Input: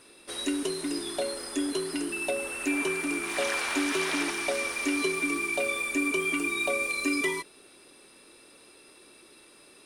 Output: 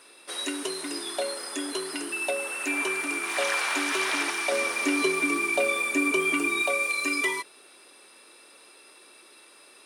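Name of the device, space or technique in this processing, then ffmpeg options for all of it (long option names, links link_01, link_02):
filter by subtraction: -filter_complex "[0:a]asplit=2[link_01][link_02];[link_02]lowpass=930,volume=-1[link_03];[link_01][link_03]amix=inputs=2:normalize=0,asettb=1/sr,asplit=3[link_04][link_05][link_06];[link_04]atrim=end=4.524[link_07];[link_05]atrim=start=4.52:end=6.62,asetpts=PTS-STARTPTS,afade=type=in:duration=0.004:curve=qsin,afade=type=out:start_time=2.096:duration=0.004:curve=qsin,lowshelf=frequency=470:gain=10[link_08];[link_06]atrim=start=6.616[link_09];[link_07][link_08]acrossfade=duration=0.004:curve1=hsin:curve2=qsin[link_10];[link_10][link_09]acrossfade=duration=0.004:curve1=qsin:curve2=hsin,volume=2dB"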